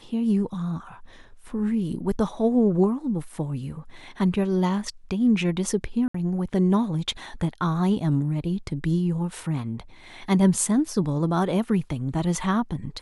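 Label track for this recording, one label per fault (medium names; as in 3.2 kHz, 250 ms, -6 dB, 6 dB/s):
6.080000	6.140000	dropout 64 ms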